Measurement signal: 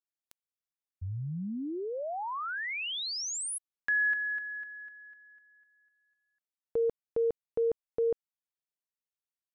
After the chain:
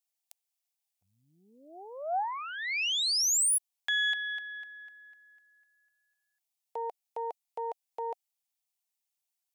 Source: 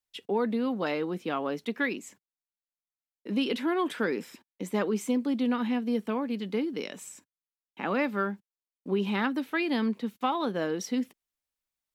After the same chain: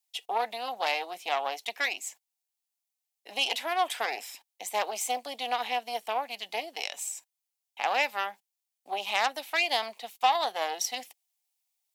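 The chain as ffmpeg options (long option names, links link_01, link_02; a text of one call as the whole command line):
ffmpeg -i in.wav -af "aeval=exprs='0.2*(cos(1*acos(clip(val(0)/0.2,-1,1)))-cos(1*PI/2))+0.00141*(cos(3*acos(clip(val(0)/0.2,-1,1)))-cos(3*PI/2))+0.0447*(cos(4*acos(clip(val(0)/0.2,-1,1)))-cos(4*PI/2))':channel_layout=same,highpass=frequency=750:width_type=q:width=5.1,aexciter=amount=4.4:drive=4.4:freq=2100,volume=-6.5dB" out.wav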